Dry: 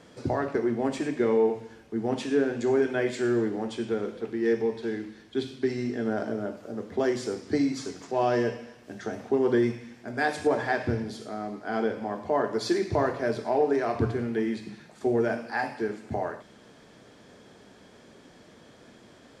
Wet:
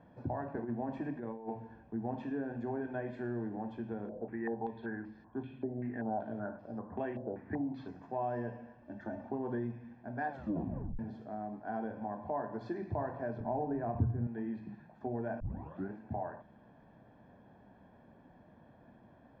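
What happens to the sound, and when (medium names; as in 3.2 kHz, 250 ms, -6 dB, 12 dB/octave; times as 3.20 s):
0.57–2.30 s: compressor with a negative ratio -26 dBFS, ratio -0.5
4.09–7.88 s: step-sequenced low-pass 5.2 Hz 610–5000 Hz
8.81–9.31 s: comb 3.4 ms
10.29 s: tape stop 0.70 s
13.40–14.27 s: RIAA curve playback
15.40 s: tape start 0.50 s
whole clip: low-pass 1.1 kHz 12 dB/octave; comb 1.2 ms, depth 61%; compression 2:1, threshold -30 dBFS; trim -6 dB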